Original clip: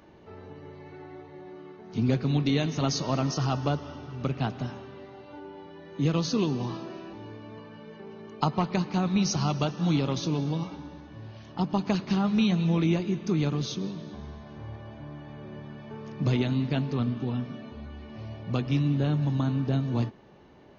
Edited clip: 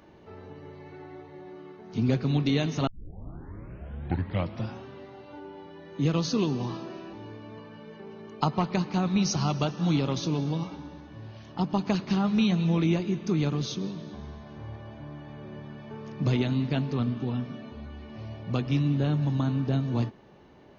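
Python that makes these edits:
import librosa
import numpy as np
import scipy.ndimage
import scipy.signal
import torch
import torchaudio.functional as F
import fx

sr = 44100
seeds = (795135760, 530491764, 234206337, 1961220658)

y = fx.edit(x, sr, fx.tape_start(start_s=2.87, length_s=1.97), tone=tone)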